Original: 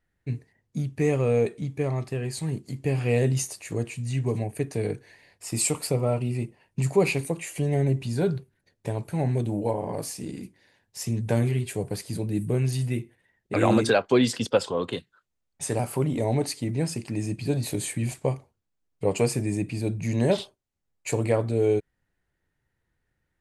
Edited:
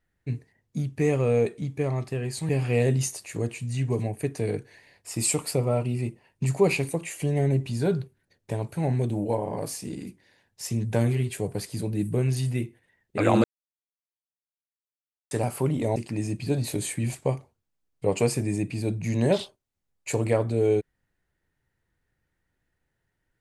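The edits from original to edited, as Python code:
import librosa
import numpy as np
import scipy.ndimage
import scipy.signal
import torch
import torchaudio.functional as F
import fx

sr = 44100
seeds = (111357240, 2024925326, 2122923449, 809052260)

y = fx.edit(x, sr, fx.cut(start_s=2.49, length_s=0.36),
    fx.silence(start_s=13.8, length_s=1.87),
    fx.cut(start_s=16.32, length_s=0.63), tone=tone)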